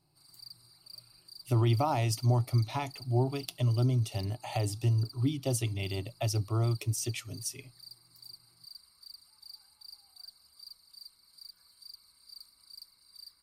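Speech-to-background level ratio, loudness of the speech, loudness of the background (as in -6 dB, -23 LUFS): 19.0 dB, -31.0 LUFS, -50.0 LUFS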